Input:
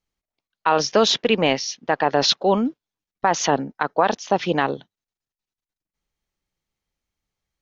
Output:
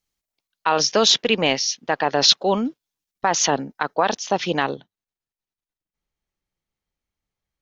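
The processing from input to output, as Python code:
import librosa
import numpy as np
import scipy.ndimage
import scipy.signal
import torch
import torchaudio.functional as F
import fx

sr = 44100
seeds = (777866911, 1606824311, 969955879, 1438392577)

y = fx.high_shelf(x, sr, hz=3300.0, db=fx.steps((0.0, 10.0), (4.74, -4.0)))
y = F.gain(torch.from_numpy(y), -2.0).numpy()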